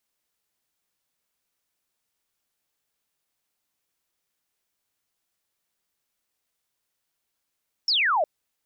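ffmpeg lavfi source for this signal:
-f lavfi -i "aevalsrc='0.112*clip(t/0.002,0,1)*clip((0.36-t)/0.002,0,1)*sin(2*PI*5600*0.36/log(570/5600)*(exp(log(570/5600)*t/0.36)-1))':d=0.36:s=44100"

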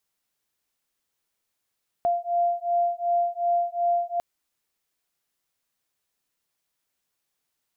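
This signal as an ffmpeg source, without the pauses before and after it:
-f lavfi -i "aevalsrc='0.0596*(sin(2*PI*693*t)+sin(2*PI*695.7*t))':d=2.15:s=44100"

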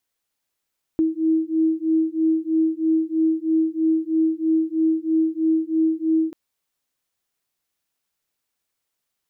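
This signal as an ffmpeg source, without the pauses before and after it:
-f lavfi -i "aevalsrc='0.0944*(sin(2*PI*319*t)+sin(2*PI*322.1*t))':d=5.34:s=44100"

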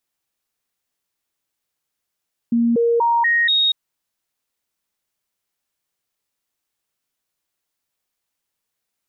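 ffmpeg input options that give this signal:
-f lavfi -i "aevalsrc='0.211*clip(min(mod(t,0.24),0.24-mod(t,0.24))/0.005,0,1)*sin(2*PI*234*pow(2,floor(t/0.24)/1)*mod(t,0.24))':d=1.2:s=44100"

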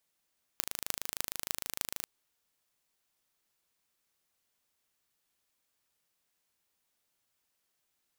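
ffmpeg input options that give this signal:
-f lavfi -i "aevalsrc='0.75*eq(mod(n,1670),0)*(0.5+0.5*eq(mod(n,13360),0))':d=1.46:s=44100"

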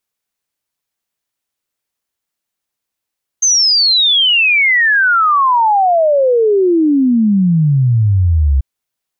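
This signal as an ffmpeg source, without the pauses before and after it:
-f lavfi -i "aevalsrc='0.398*clip(min(t,5.19-t)/0.01,0,1)*sin(2*PI*6400*5.19/log(65/6400)*(exp(log(65/6400)*t/5.19)-1))':d=5.19:s=44100"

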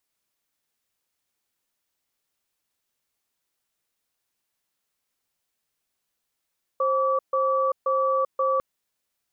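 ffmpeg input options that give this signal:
-f lavfi -i "aevalsrc='0.075*(sin(2*PI*530*t)+sin(2*PI*1150*t))*clip(min(mod(t,0.53),0.39-mod(t,0.53))/0.005,0,1)':d=1.8:s=44100"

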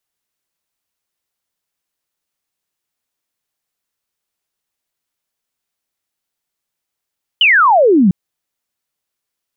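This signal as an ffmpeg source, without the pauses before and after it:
-f lavfi -i "aevalsrc='0.473*clip(t/0.002,0,1)*clip((0.7-t)/0.002,0,1)*sin(2*PI*3100*0.7/log(170/3100)*(exp(log(170/3100)*t/0.7)-1))':d=0.7:s=44100"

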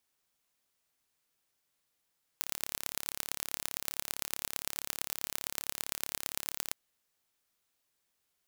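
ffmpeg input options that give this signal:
-f lavfi -i "aevalsrc='0.596*eq(mod(n,1249),0)*(0.5+0.5*eq(mod(n,4996),0))':d=4.33:s=44100"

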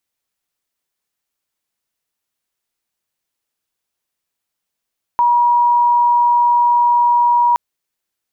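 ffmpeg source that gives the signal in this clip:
-f lavfi -i "sine=f=959:d=2.37:r=44100,volume=8.56dB"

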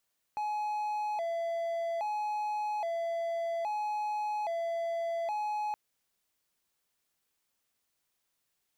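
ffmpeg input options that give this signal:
-f lavfi -i "aevalsrc='0.0376*(1-4*abs(mod((757.5*t+85.5/0.61*(0.5-abs(mod(0.61*t,1)-0.5)))+0.25,1)-0.5))':d=5.37:s=44100"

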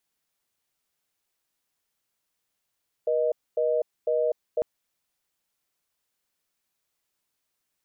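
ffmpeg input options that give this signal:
-f lavfi -i "aevalsrc='0.0631*(sin(2*PI*480*t)+sin(2*PI*620*t))*clip(min(mod(t,0.5),0.25-mod(t,0.5))/0.005,0,1)':d=1.55:s=44100"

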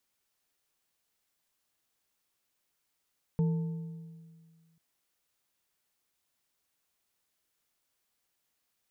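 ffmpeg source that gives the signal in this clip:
-f lavfi -i "aevalsrc='0.0708*pow(10,-3*t/1.91)*sin(2*PI*164*t)+0.0178*pow(10,-3*t/1.409)*sin(2*PI*452.1*t)+0.00447*pow(10,-3*t/1.151)*sin(2*PI*886.3*t)':d=1.39:s=44100"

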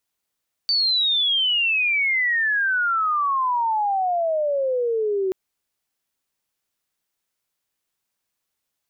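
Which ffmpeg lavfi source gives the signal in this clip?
-f lavfi -i "aevalsrc='pow(10,(-17-2.5*t/4.63)/20)*sin(2*PI*4600*4.63/log(370/4600)*(exp(log(370/4600)*t/4.63)-1))':d=4.63:s=44100"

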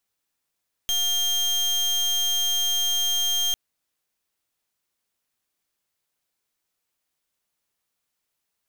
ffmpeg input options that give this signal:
-f lavfi -i "aevalsrc='0.0708*(2*lt(mod(3200*t,1),0.31)-1)':d=2.65:s=44100"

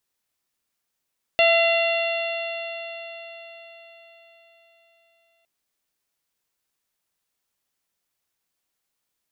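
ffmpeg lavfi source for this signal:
-f lavfi -i "aevalsrc='0.158*pow(10,-3*t/4.73)*sin(2*PI*669.2*t)+0.0282*pow(10,-3*t/4.73)*sin(2*PI*1345.58*t)+0.0631*pow(10,-3*t/4.73)*sin(2*PI*2036.21*t)+0.133*pow(10,-3*t/4.73)*sin(2*PI*2747.88*t)+0.0473*pow(10,-3*t/4.73)*sin(2*PI*3487.06*t)+0.0211*pow(10,-3*t/4.73)*sin(2*PI*4259.81*t)':d=4.06:s=44100"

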